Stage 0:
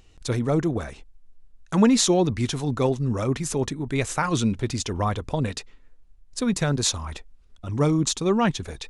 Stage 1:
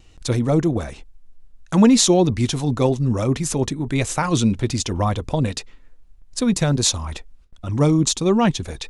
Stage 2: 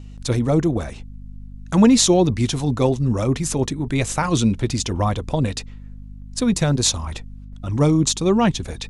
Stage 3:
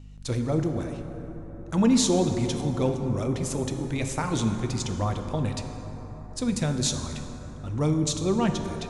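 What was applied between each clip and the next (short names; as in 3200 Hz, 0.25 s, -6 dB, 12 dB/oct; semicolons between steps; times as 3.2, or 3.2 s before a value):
gate with hold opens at -44 dBFS; notch 420 Hz, Q 12; dynamic EQ 1500 Hz, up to -5 dB, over -42 dBFS, Q 1.2; gain +5 dB
hum 50 Hz, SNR 17 dB
plate-style reverb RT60 4.4 s, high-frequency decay 0.35×, DRR 5 dB; gain -8.5 dB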